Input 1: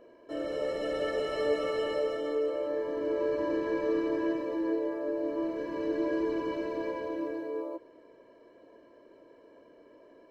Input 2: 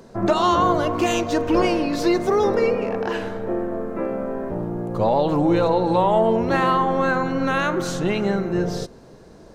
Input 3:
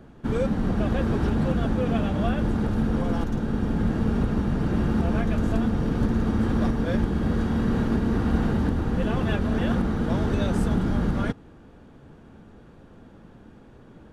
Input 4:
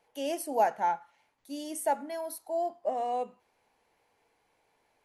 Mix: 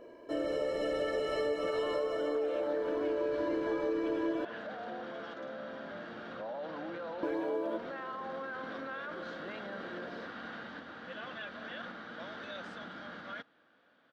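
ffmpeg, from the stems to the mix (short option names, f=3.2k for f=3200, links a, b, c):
-filter_complex "[0:a]acontrast=78,volume=-3.5dB,asplit=3[a][b][c];[a]atrim=end=4.45,asetpts=PTS-STARTPTS,afade=t=out:st=4.446:d=0.004:c=hsin[d];[b]atrim=start=4.45:end=7.23,asetpts=PTS-STARTPTS,volume=0[e];[c]atrim=start=7.23,asetpts=PTS-STARTPTS,afade=t=in:d=0.004:c=hsin[f];[d][e][f]concat=n=3:v=0:a=1[g];[1:a]adelay=1400,volume=-15dB[h];[2:a]crystalizer=i=9.5:c=0,adelay=2100,volume=-16dB[i];[3:a]adelay=1800,volume=-11.5dB[j];[h][i][j]amix=inputs=3:normalize=0,highpass=380,equalizer=f=400:t=q:w=4:g=-9,equalizer=f=590:t=q:w=4:g=4,equalizer=f=880:t=q:w=4:g=-5,equalizer=f=1.5k:t=q:w=4:g=5,equalizer=f=2.6k:t=q:w=4:g=-6,lowpass=f=3.5k:w=0.5412,lowpass=f=3.5k:w=1.3066,alimiter=level_in=9.5dB:limit=-24dB:level=0:latency=1:release=16,volume=-9.5dB,volume=0dB[k];[g][k]amix=inputs=2:normalize=0,acompressor=threshold=-30dB:ratio=5"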